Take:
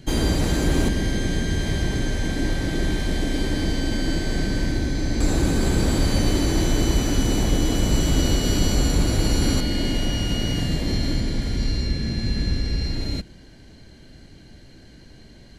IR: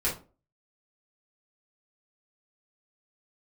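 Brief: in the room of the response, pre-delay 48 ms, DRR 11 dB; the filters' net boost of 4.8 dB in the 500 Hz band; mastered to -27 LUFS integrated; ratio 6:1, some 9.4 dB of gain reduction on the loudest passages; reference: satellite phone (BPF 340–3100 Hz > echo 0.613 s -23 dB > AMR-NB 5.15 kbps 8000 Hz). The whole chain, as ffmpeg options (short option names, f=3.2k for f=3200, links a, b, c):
-filter_complex "[0:a]equalizer=f=500:t=o:g=8,acompressor=threshold=-24dB:ratio=6,asplit=2[a][b];[1:a]atrim=start_sample=2205,adelay=48[c];[b][c]afir=irnorm=-1:irlink=0,volume=-19.5dB[d];[a][d]amix=inputs=2:normalize=0,highpass=340,lowpass=3.1k,aecho=1:1:613:0.0708,volume=10.5dB" -ar 8000 -c:a libopencore_amrnb -b:a 5150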